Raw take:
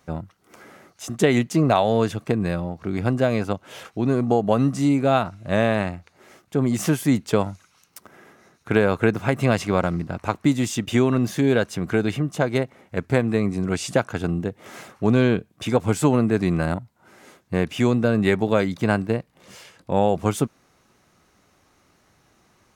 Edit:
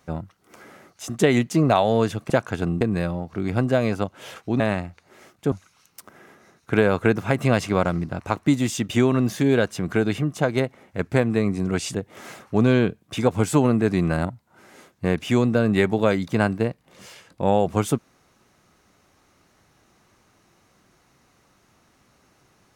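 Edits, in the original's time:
4.09–5.69 s: delete
6.61–7.50 s: delete
13.92–14.43 s: move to 2.30 s

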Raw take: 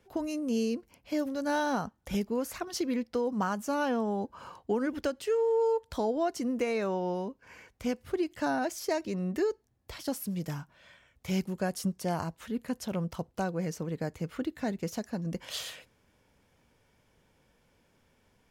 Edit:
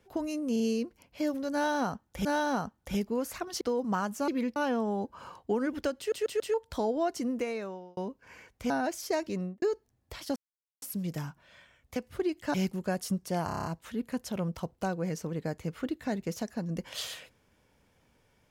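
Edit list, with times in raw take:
0.52 s: stutter 0.04 s, 3 plays
1.45–2.17 s: loop, 2 plays
2.81–3.09 s: move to 3.76 s
5.18 s: stutter in place 0.14 s, 4 plays
6.45–7.17 s: fade out
7.90–8.48 s: move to 11.28 s
9.15–9.40 s: studio fade out
10.14 s: insert silence 0.46 s
12.21 s: stutter 0.03 s, 7 plays

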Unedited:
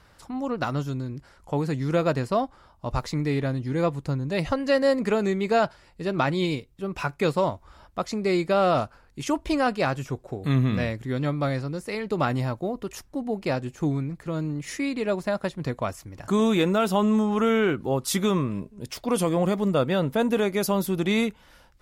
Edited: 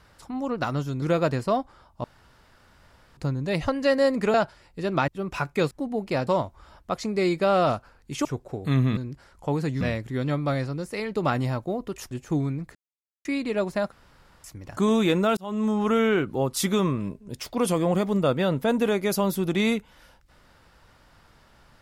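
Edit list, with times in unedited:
1.02–1.86 s: move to 10.76 s
2.88–4.01 s: room tone
5.18–5.56 s: delete
6.30–6.72 s: delete
9.33–10.04 s: delete
13.06–13.62 s: move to 7.35 s
14.26–14.76 s: mute
15.43–15.95 s: room tone
16.88–17.28 s: fade in

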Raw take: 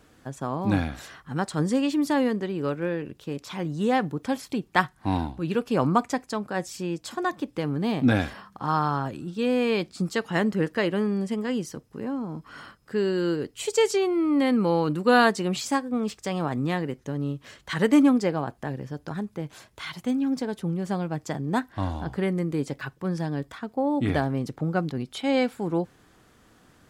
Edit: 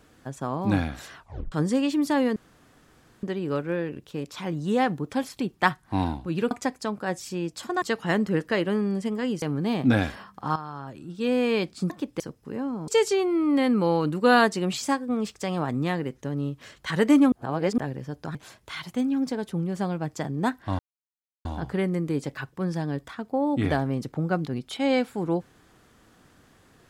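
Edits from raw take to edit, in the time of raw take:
1.16 s: tape stop 0.36 s
2.36 s: insert room tone 0.87 s
5.64–5.99 s: delete
7.30–7.60 s: swap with 10.08–11.68 s
8.74–9.46 s: fade in quadratic, from -13.5 dB
12.36–13.71 s: delete
18.15–18.61 s: reverse
19.18–19.45 s: delete
21.89 s: insert silence 0.66 s

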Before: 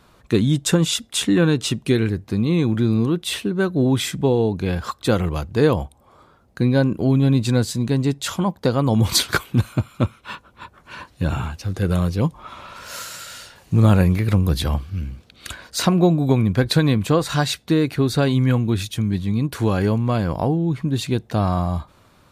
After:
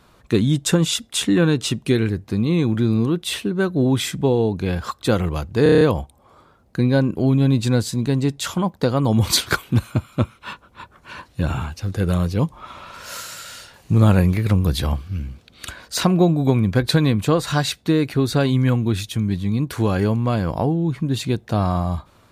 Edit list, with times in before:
5.63 s: stutter 0.03 s, 7 plays

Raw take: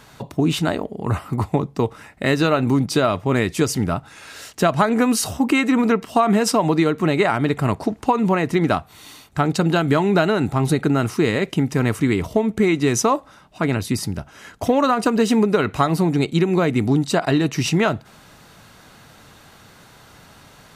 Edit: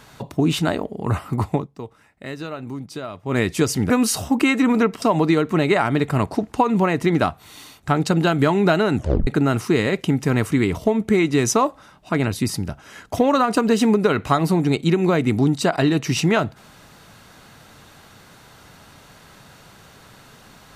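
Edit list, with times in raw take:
1.52–3.39 s: dip -13.5 dB, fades 0.16 s
3.90–4.99 s: delete
6.11–6.51 s: delete
10.45 s: tape stop 0.31 s

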